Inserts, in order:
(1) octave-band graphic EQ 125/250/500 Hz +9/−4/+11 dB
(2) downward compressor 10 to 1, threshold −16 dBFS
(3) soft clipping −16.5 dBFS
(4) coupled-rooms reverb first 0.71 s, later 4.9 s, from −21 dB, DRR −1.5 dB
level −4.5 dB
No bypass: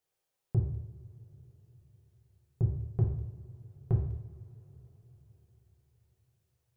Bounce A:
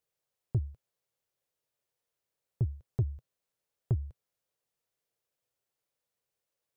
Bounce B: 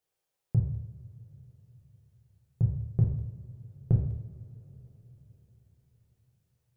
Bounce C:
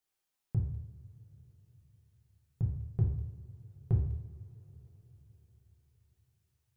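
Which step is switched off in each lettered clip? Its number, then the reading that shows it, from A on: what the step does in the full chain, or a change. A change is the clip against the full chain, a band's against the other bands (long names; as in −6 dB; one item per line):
4, change in momentary loudness spread −8 LU
3, distortion level −13 dB
1, change in integrated loudness −1.5 LU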